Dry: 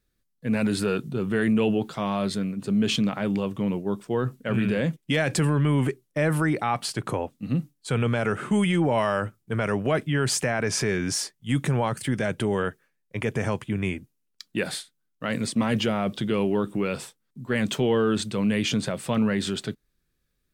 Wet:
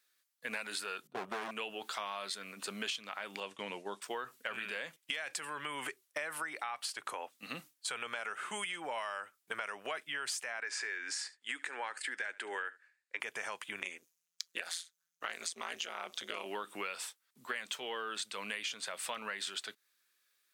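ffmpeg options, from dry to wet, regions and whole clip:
-filter_complex "[0:a]asettb=1/sr,asplit=3[a][b][c];[a]atrim=end=1.074[d];[b]atrim=start=1.07:end=1.51,asetpts=PTS-STARTPTS,afade=t=in:d=0.004:c=qsin,afade=t=out:st=0.436:d=0.004:c=qsin,tiltshelf=f=1.2k:g=9.5,agate=range=-18dB:threshold=-20dB:ratio=16:release=100:detection=peak,volume=18dB,asoftclip=hard,volume=-18dB[e];[c]atrim=start=1.506[f];[d][e]acrossfade=d=0.004:c1=hsin:c2=qsin[g];[g][f]acrossfade=d=0.004:c1=qsin:c2=hsin,asettb=1/sr,asplit=3[h][i][j];[h]atrim=end=3.404[k];[i]atrim=start=3.4:end=4.02,asetpts=PTS-STARTPTS,afade=t=in:d=0.004:c=qsin,afade=t=out:st=0.616:d=0.004:c=qsin,lowpass=f=9.8k:w=0.5412,lowpass=f=9.8k:w=1.3066,equalizer=f=1.2k:w=3:g=-6.5,agate=range=-33dB:threshold=-34dB:ratio=3:release=100:detection=peak[l];[j]atrim=start=4.016[m];[k][l]acrossfade=d=0.004:c1=hsin:c2=qsin[n];[n][m]acrossfade=d=0.004:c1=qsin:c2=hsin,asettb=1/sr,asplit=3[o][p][q];[o]atrim=end=10.604[r];[p]atrim=start=10.6:end=13.2,asetpts=PTS-STARTPTS,afade=t=in:d=0.004:c=qsin,afade=t=out:st=2.596:d=0.004:c=qsin,highpass=f=270:w=0.5412,highpass=f=270:w=1.3066,equalizer=f=280:t=q:w=4:g=3,equalizer=f=640:t=q:w=4:g=-7,equalizer=f=1.1k:t=q:w=4:g=-5,equalizer=f=1.7k:t=q:w=4:g=6,equalizer=f=3.2k:t=q:w=4:g=-6,equalizer=f=5.9k:t=q:w=4:g=-9,lowpass=f=7.9k:w=0.5412,lowpass=f=7.9k:w=1.3066,aecho=1:1:73:0.075,atrim=end_sample=114660[s];[q]atrim=start=13.196[t];[r][s]acrossfade=d=0.004:c1=hsin:c2=qsin[u];[u][t]acrossfade=d=0.004:c1=qsin:c2=hsin,asettb=1/sr,asplit=3[v][w][x];[v]atrim=end=13.804[y];[w]atrim=start=13.8:end=16.46,asetpts=PTS-STARTPTS,afade=t=in:d=0.004:c=qsin,afade=t=out:st=2.656:d=0.004:c=qsin,equalizer=f=6.4k:t=o:w=0.39:g=9,tremolo=f=170:d=0.974[z];[x]atrim=start=16.456[aa];[y][z]acrossfade=d=0.004:c1=hsin:c2=qsin[ab];[ab][aa]acrossfade=d=0.004:c1=qsin:c2=hsin,highpass=1.1k,acompressor=threshold=-42dB:ratio=10,volume=6dB"

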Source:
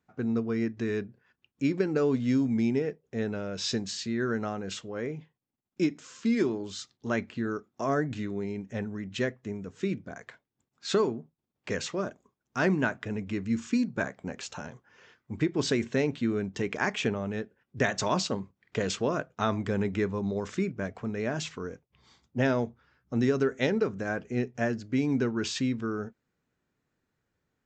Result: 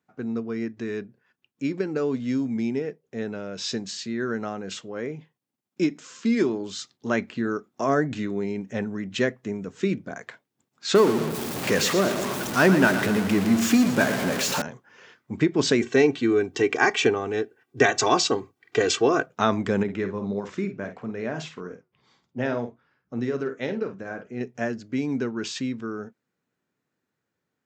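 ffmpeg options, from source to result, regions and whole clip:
-filter_complex "[0:a]asettb=1/sr,asplit=3[a][b][c];[a]atrim=end=10.954[d];[b]atrim=start=10.95:end=14.62,asetpts=PTS-STARTPTS,afade=t=in:d=0.004:c=qsin,afade=t=out:st=3.666:d=0.004:c=qsin,aeval=exprs='val(0)+0.5*0.0335*sgn(val(0))':c=same,aecho=1:1:118|236|354|472|590|708:0.316|0.177|0.0992|0.0555|0.0311|0.0174,atrim=end_sample=161847[e];[c]atrim=start=14.616[f];[d][e]acrossfade=d=0.004:c1=hsin:c2=qsin[g];[g][f]acrossfade=d=0.004:c1=qsin:c2=hsin,asettb=1/sr,asplit=3[h][i][j];[h]atrim=end=15.814[k];[i]atrim=start=15.81:end=19.26,asetpts=PTS-STARTPTS,afade=t=in:d=0.004:c=qsin,afade=t=out:st=3.446:d=0.004:c=qsin,highpass=99,aecho=1:1:2.6:0.79,atrim=end_sample=152145[l];[j]atrim=start=19.256[m];[k][l]acrossfade=d=0.004:c1=hsin:c2=qsin[n];[n][m]acrossfade=d=0.004:c1=qsin:c2=hsin,asettb=1/sr,asplit=3[o][p][q];[o]atrim=end=19.834[r];[p]atrim=start=19.83:end=24.41,asetpts=PTS-STARTPTS,afade=t=in:d=0.004:c=qsin,afade=t=out:st=4.576:d=0.004:c=qsin,lowpass=f=3.4k:p=1,asplit=2[s][t];[t]adelay=50,volume=-9dB[u];[s][u]amix=inputs=2:normalize=0,atrim=end_sample=201978,flanger=delay=4.8:depth=5:regen=-80:speed=1.7:shape=triangular[v];[q]atrim=start=24.406[w];[r][v]acrossfade=d=0.004:c1=hsin:c2=qsin[x];[x][w]acrossfade=d=0.004:c1=qsin:c2=hsin,highpass=140,dynaudnorm=f=730:g=17:m=8dB"

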